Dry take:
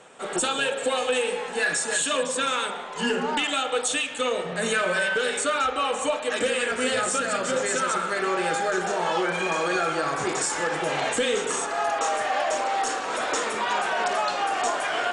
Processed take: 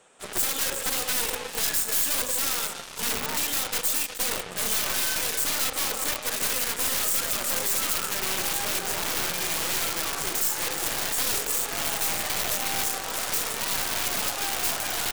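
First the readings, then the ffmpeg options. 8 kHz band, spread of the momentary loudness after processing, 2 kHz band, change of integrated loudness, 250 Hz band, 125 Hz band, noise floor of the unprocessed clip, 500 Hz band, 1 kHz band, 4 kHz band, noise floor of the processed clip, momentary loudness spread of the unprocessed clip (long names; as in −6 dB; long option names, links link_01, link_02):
+4.0 dB, 3 LU, −5.5 dB, 0.0 dB, −7.5 dB, −1.0 dB, −33 dBFS, −11.0 dB, −8.5 dB, +1.0 dB, −38 dBFS, 3 LU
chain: -af "aecho=1:1:360:0.251,aeval=exprs='(mod(10*val(0)+1,2)-1)/10':channel_layout=same,aeval=exprs='0.1*(cos(1*acos(clip(val(0)/0.1,-1,1)))-cos(1*PI/2))+0.0398*(cos(2*acos(clip(val(0)/0.1,-1,1)))-cos(2*PI/2))+0.0251*(cos(7*acos(clip(val(0)/0.1,-1,1)))-cos(7*PI/2))':channel_layout=same,crystalizer=i=1.5:c=0,volume=-7dB"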